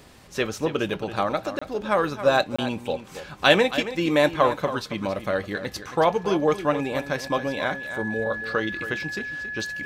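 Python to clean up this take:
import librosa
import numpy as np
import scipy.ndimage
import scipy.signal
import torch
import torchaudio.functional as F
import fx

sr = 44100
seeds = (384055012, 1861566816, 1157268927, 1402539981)

y = fx.notch(x, sr, hz=1700.0, q=30.0)
y = fx.fix_interpolate(y, sr, at_s=(1.59, 2.56), length_ms=25.0)
y = fx.fix_echo_inverse(y, sr, delay_ms=275, level_db=-12.0)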